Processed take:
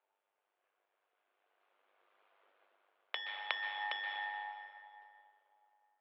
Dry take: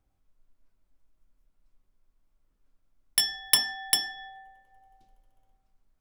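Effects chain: Doppler pass-by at 2.25 s, 9 m/s, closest 3.5 m; compression 12:1, threshold -44 dBFS, peak gain reduction 19 dB; mistuned SSB +87 Hz 410–3200 Hz; plate-style reverb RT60 2.5 s, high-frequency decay 0.65×, pre-delay 115 ms, DRR 4 dB; AM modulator 100 Hz, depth 40%; trim +18 dB

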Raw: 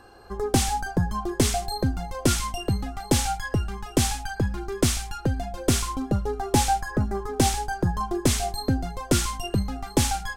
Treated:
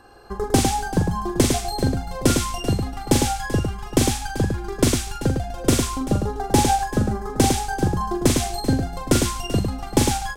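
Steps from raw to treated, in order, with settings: transient shaper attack +4 dB, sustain -2 dB; multi-tap echo 42/105/386 ms -6.5/-5/-15 dB

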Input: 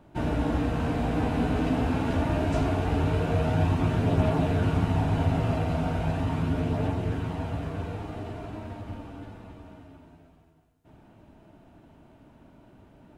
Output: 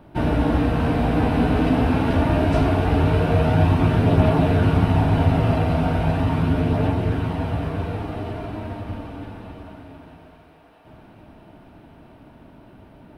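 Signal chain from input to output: peaking EQ 7 kHz -11.5 dB 0.44 oct; thinning echo 649 ms, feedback 79%, high-pass 220 Hz, level -20 dB; trim +7 dB

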